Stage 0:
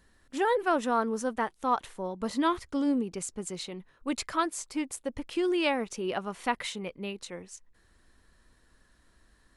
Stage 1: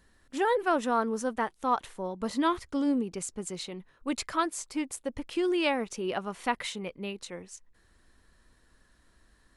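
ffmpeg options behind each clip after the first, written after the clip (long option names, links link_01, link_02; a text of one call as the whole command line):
ffmpeg -i in.wav -af anull out.wav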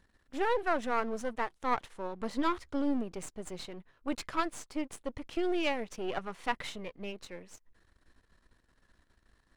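ffmpeg -i in.wav -af "aeval=exprs='if(lt(val(0),0),0.251*val(0),val(0))':channel_layout=same,highshelf=frequency=7300:gain=-10.5" out.wav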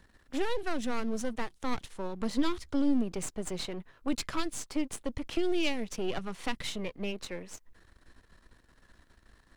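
ffmpeg -i in.wav -filter_complex "[0:a]acrossover=split=300|3000[link_01][link_02][link_03];[link_02]acompressor=threshold=-44dB:ratio=6[link_04];[link_01][link_04][link_03]amix=inputs=3:normalize=0,volume=7dB" out.wav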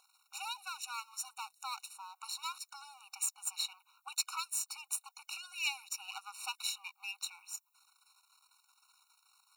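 ffmpeg -i in.wav -af "aeval=exprs='val(0)+0.00398*sin(2*PI*660*n/s)':channel_layout=same,crystalizer=i=4:c=0,afftfilt=real='re*eq(mod(floor(b*sr/1024/740),2),1)':imag='im*eq(mod(floor(b*sr/1024/740),2),1)':win_size=1024:overlap=0.75,volume=-5dB" out.wav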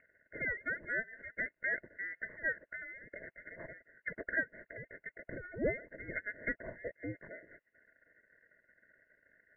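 ffmpeg -i in.wav -af "lowpass=frequency=2500:width_type=q:width=0.5098,lowpass=frequency=2500:width_type=q:width=0.6013,lowpass=frequency=2500:width_type=q:width=0.9,lowpass=frequency=2500:width_type=q:width=2.563,afreqshift=-2900,volume=7.5dB" out.wav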